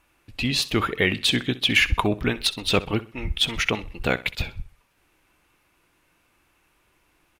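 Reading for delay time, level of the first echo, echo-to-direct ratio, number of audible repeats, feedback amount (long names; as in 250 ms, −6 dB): 64 ms, −17.5 dB, −17.0 dB, 2, 33%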